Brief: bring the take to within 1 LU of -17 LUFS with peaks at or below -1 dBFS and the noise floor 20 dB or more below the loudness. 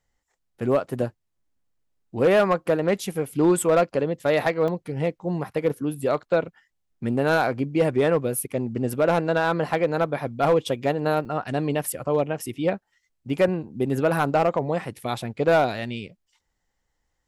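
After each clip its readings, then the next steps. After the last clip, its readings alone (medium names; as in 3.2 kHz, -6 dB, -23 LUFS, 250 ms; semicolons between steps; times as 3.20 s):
clipped samples 0.5%; clipping level -12.5 dBFS; dropouts 2; longest dropout 2.9 ms; loudness -24.0 LUFS; peak level -12.5 dBFS; loudness target -17.0 LUFS
-> clip repair -12.5 dBFS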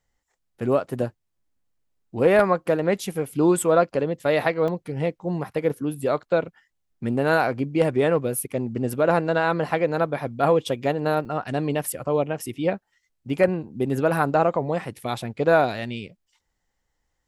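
clipped samples 0.0%; dropouts 2; longest dropout 2.9 ms
-> interpolate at 4.68/11.25 s, 2.9 ms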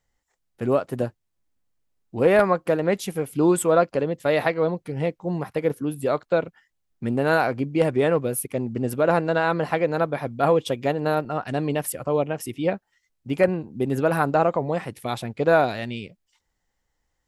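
dropouts 0; loudness -23.5 LUFS; peak level -5.0 dBFS; loudness target -17.0 LUFS
-> trim +6.5 dB; peak limiter -1 dBFS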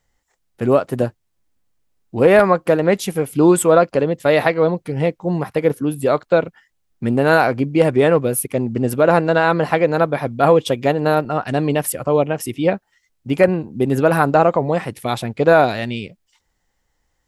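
loudness -17.0 LUFS; peak level -1.0 dBFS; noise floor -69 dBFS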